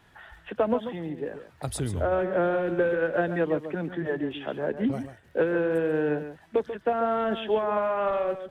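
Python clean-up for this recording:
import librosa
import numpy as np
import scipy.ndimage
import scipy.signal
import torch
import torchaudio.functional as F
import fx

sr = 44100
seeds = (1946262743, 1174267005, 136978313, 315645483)

y = fx.fix_declick_ar(x, sr, threshold=6.5)
y = fx.fix_echo_inverse(y, sr, delay_ms=139, level_db=-10.5)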